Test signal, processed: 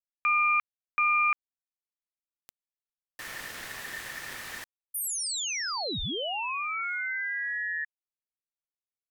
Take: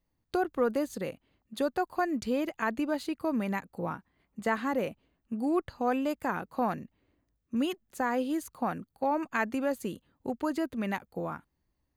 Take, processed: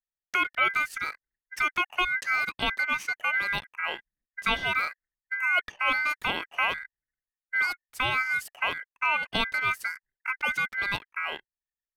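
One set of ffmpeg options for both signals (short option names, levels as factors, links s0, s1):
-af "aeval=exprs='val(0)*sin(2*PI*1800*n/s)':c=same,anlmdn=0.000158,volume=1.88"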